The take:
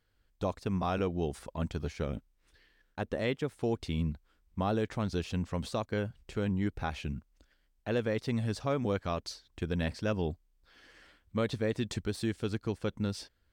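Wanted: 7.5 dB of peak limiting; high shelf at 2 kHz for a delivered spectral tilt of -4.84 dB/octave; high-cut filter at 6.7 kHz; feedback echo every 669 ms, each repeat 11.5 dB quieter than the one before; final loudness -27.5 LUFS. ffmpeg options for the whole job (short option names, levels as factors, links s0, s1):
-af "lowpass=6700,highshelf=f=2000:g=9,alimiter=limit=0.0631:level=0:latency=1,aecho=1:1:669|1338|2007:0.266|0.0718|0.0194,volume=2.51"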